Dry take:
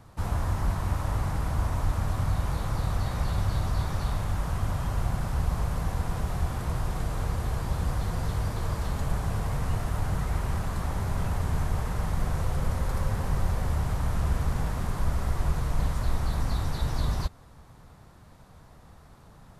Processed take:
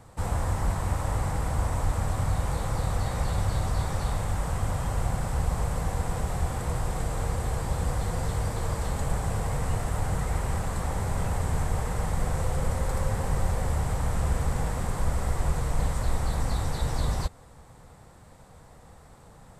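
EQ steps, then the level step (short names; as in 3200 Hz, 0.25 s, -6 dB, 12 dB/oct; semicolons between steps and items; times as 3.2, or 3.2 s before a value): thirty-one-band EQ 500 Hz +7 dB, 800 Hz +4 dB, 2000 Hz +3 dB, 8000 Hz +11 dB; 0.0 dB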